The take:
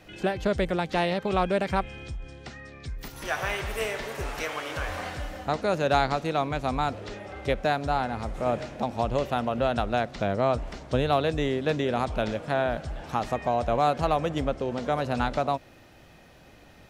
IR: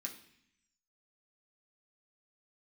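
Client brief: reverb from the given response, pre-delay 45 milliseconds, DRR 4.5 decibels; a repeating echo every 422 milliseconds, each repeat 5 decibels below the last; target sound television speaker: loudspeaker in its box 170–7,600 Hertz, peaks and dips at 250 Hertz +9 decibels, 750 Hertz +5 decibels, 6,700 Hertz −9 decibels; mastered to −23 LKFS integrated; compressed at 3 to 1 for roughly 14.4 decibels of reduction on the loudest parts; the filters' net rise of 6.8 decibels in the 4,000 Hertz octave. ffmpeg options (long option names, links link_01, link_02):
-filter_complex "[0:a]equalizer=frequency=4000:width_type=o:gain=8.5,acompressor=threshold=-38dB:ratio=3,aecho=1:1:422|844|1266|1688|2110|2532|2954:0.562|0.315|0.176|0.0988|0.0553|0.031|0.0173,asplit=2[link_01][link_02];[1:a]atrim=start_sample=2205,adelay=45[link_03];[link_02][link_03]afir=irnorm=-1:irlink=0,volume=-2dB[link_04];[link_01][link_04]amix=inputs=2:normalize=0,highpass=frequency=170:width=0.5412,highpass=frequency=170:width=1.3066,equalizer=frequency=250:width_type=q:width=4:gain=9,equalizer=frequency=750:width_type=q:width=4:gain=5,equalizer=frequency=6700:width_type=q:width=4:gain=-9,lowpass=frequency=7600:width=0.5412,lowpass=frequency=7600:width=1.3066,volume=11.5dB"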